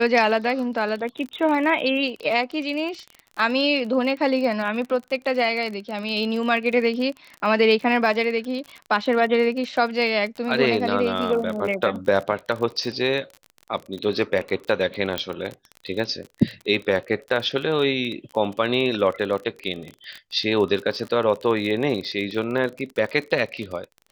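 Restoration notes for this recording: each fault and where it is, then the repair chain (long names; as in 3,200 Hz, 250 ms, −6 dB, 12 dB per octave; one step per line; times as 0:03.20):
surface crackle 35 per second −29 dBFS
0:15.18: click −10 dBFS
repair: click removal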